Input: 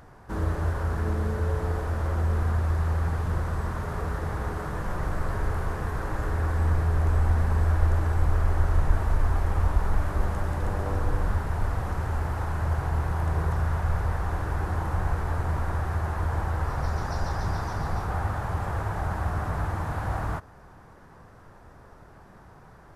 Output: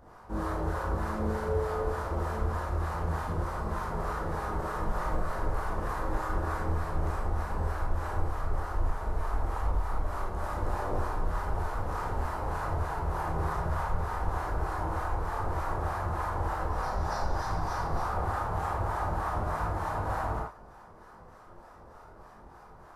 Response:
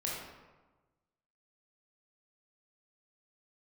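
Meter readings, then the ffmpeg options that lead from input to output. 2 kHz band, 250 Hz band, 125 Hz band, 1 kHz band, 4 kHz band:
−3.0 dB, −3.5 dB, −8.5 dB, +1.0 dB, −2.5 dB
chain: -filter_complex "[0:a]equalizer=frequency=125:width_type=o:width=1:gain=-10,equalizer=frequency=1000:width_type=o:width=1:gain=5,equalizer=frequency=2000:width_type=o:width=1:gain=-4,alimiter=limit=-18.5dB:level=0:latency=1:release=329,acrossover=split=660[link_01][link_02];[link_01]aeval=exprs='val(0)*(1-0.7/2+0.7/2*cos(2*PI*3.3*n/s))':channel_layout=same[link_03];[link_02]aeval=exprs='val(0)*(1-0.7/2-0.7/2*cos(2*PI*3.3*n/s))':channel_layout=same[link_04];[link_03][link_04]amix=inputs=2:normalize=0[link_05];[1:a]atrim=start_sample=2205,afade=type=out:start_time=0.17:duration=0.01,atrim=end_sample=7938[link_06];[link_05][link_06]afir=irnorm=-1:irlink=0"

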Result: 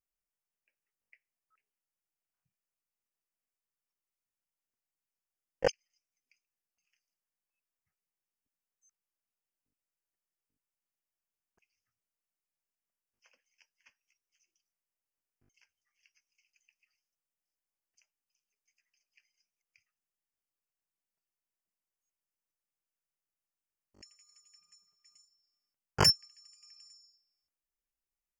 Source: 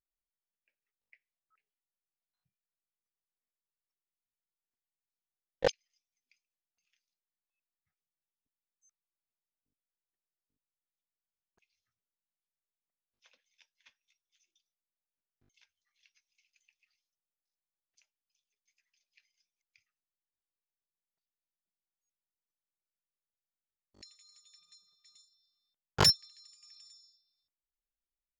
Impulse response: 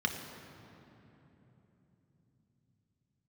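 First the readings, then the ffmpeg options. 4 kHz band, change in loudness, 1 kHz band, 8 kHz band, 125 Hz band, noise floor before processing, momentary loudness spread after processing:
−0.5 dB, 0.0 dB, 0.0 dB, 0.0 dB, 0.0 dB, below −85 dBFS, 11 LU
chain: -af "asuperstop=centerf=3800:order=8:qfactor=2.5"

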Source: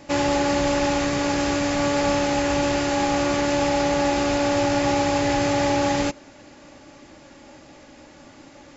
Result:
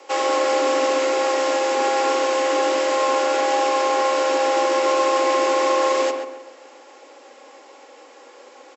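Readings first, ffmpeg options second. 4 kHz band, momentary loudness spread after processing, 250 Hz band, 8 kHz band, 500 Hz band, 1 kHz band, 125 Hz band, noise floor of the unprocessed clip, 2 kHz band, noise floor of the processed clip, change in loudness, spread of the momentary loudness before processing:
+1.0 dB, 2 LU, −7.5 dB, can't be measured, +4.5 dB, +4.5 dB, below −40 dB, −48 dBFS, +1.0 dB, −47 dBFS, +2.0 dB, 2 LU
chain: -filter_complex "[0:a]afreqshift=240,asplit=2[link_01][link_02];[link_02]adelay=135,lowpass=frequency=2200:poles=1,volume=-5.5dB,asplit=2[link_03][link_04];[link_04]adelay=135,lowpass=frequency=2200:poles=1,volume=0.4,asplit=2[link_05][link_06];[link_06]adelay=135,lowpass=frequency=2200:poles=1,volume=0.4,asplit=2[link_07][link_08];[link_08]adelay=135,lowpass=frequency=2200:poles=1,volume=0.4,asplit=2[link_09][link_10];[link_10]adelay=135,lowpass=frequency=2200:poles=1,volume=0.4[link_11];[link_01][link_03][link_05][link_07][link_09][link_11]amix=inputs=6:normalize=0"

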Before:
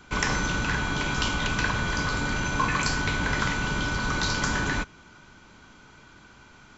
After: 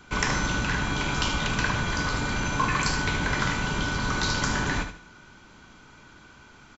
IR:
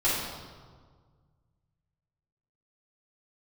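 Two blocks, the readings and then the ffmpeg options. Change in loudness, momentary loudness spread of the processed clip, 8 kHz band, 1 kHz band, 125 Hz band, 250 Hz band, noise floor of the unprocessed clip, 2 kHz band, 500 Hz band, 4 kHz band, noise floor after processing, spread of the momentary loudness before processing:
0.0 dB, 2 LU, can't be measured, +0.5 dB, +0.5 dB, +0.5 dB, −52 dBFS, −1.0 dB, +0.5 dB, +0.5 dB, −52 dBFS, 2 LU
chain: -af "aecho=1:1:75|150|225|300:0.355|0.11|0.0341|0.0106"

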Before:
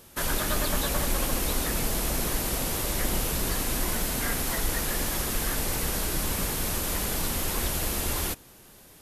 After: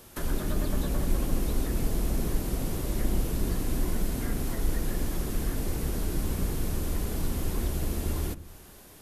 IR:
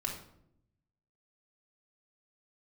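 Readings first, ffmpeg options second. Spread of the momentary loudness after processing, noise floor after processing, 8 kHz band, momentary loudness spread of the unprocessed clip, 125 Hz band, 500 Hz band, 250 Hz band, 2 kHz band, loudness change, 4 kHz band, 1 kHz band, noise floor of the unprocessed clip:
2 LU, −50 dBFS, −11.0 dB, 1 LU, +2.5 dB, −3.0 dB, +1.0 dB, −10.5 dB, −4.0 dB, −11.0 dB, −8.0 dB, −52 dBFS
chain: -filter_complex "[0:a]acrossover=split=430[link_01][link_02];[link_02]acompressor=threshold=-39dB:ratio=10[link_03];[link_01][link_03]amix=inputs=2:normalize=0,asplit=2[link_04][link_05];[1:a]atrim=start_sample=2205,lowpass=2100[link_06];[link_05][link_06]afir=irnorm=-1:irlink=0,volume=-11dB[link_07];[link_04][link_07]amix=inputs=2:normalize=0"

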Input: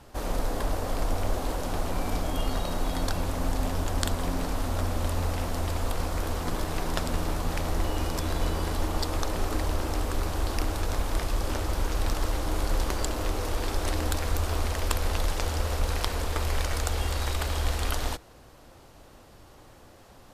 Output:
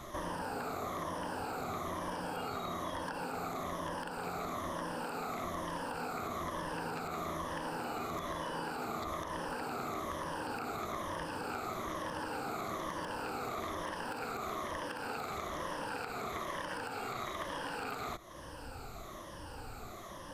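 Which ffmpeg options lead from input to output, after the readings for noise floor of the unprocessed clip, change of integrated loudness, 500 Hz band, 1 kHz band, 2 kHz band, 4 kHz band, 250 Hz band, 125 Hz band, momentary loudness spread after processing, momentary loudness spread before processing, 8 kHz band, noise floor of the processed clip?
−52 dBFS, −9.0 dB, −6.5 dB, −3.0 dB, −4.5 dB, −11.0 dB, −8.0 dB, −17.5 dB, 3 LU, 2 LU, −13.0 dB, −47 dBFS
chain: -filter_complex "[0:a]afftfilt=real='re*pow(10,13/40*sin(2*PI*(1.2*log(max(b,1)*sr/1024/100)/log(2)-(-1.1)*(pts-256)/sr)))':imag='im*pow(10,13/40*sin(2*PI*(1.2*log(max(b,1)*sr/1024/100)/log(2)-(-1.1)*(pts-256)/sr)))':win_size=1024:overlap=0.75,afftfilt=real='re*lt(hypot(re,im),0.178)':imag='im*lt(hypot(re,im),0.178)':win_size=1024:overlap=0.75,equalizer=frequency=1200:width_type=o:width=0.73:gain=5.5,acompressor=threshold=-44dB:ratio=2.5,asoftclip=type=hard:threshold=-32dB,acrossover=split=2700[link_01][link_02];[link_02]acompressor=threshold=-54dB:ratio=4:attack=1:release=60[link_03];[link_01][link_03]amix=inputs=2:normalize=0,volume=3dB"

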